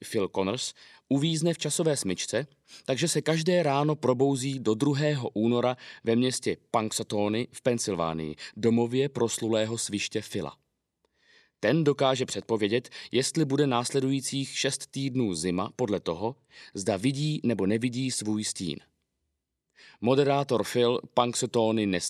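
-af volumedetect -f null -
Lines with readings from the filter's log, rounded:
mean_volume: -27.8 dB
max_volume: -6.9 dB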